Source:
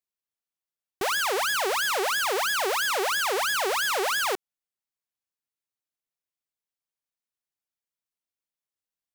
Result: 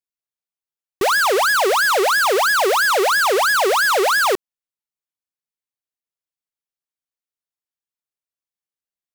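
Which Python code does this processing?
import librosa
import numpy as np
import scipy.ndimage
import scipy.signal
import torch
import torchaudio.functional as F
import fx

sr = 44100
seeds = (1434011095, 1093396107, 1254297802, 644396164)

y = fx.leveller(x, sr, passes=5)
y = y * librosa.db_to_amplitude(6.0)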